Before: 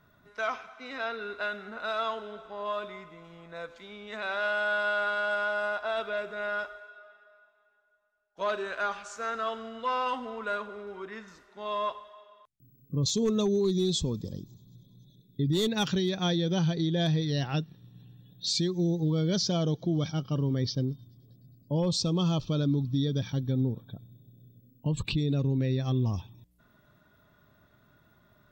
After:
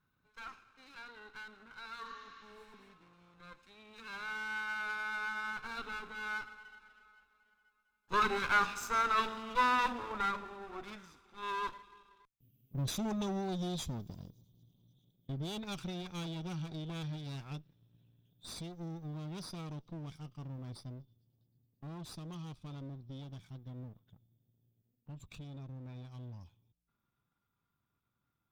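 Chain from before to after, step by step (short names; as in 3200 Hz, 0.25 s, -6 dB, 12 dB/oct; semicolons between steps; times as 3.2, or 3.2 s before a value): minimum comb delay 0.8 ms; Doppler pass-by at 8.89, 12 m/s, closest 13 m; spectral repair 2.07–2.87, 1000–7200 Hz both; gain +3.5 dB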